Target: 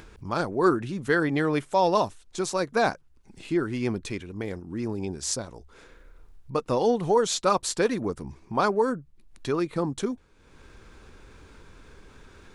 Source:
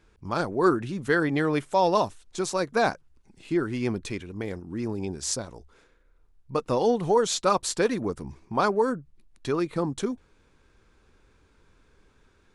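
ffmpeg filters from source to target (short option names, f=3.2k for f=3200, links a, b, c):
-af "acompressor=mode=upward:threshold=-37dB:ratio=2.5"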